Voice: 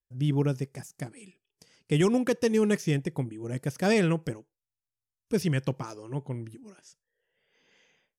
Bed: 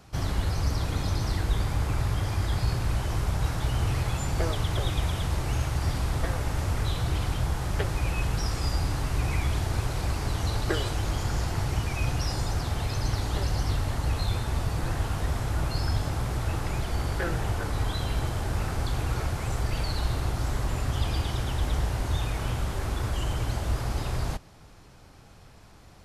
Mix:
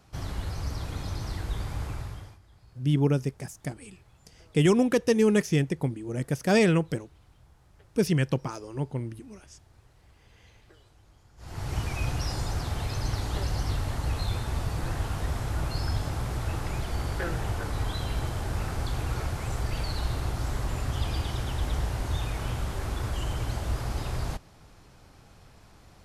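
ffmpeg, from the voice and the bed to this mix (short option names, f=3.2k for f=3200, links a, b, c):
-filter_complex "[0:a]adelay=2650,volume=2.5dB[a];[1:a]volume=22dB,afade=t=out:st=1.84:d=0.55:silence=0.0630957,afade=t=in:st=11.37:d=0.42:silence=0.0398107[b];[a][b]amix=inputs=2:normalize=0"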